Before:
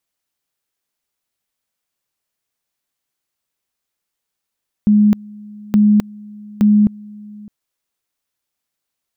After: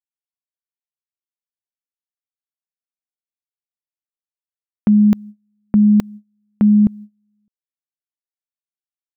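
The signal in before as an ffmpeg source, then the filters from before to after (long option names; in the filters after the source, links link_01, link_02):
-f lavfi -i "aevalsrc='pow(10,(-7.5-24.5*gte(mod(t,0.87),0.26))/20)*sin(2*PI*209*t)':duration=2.61:sample_rate=44100"
-af "agate=range=-30dB:threshold=-31dB:ratio=16:detection=peak"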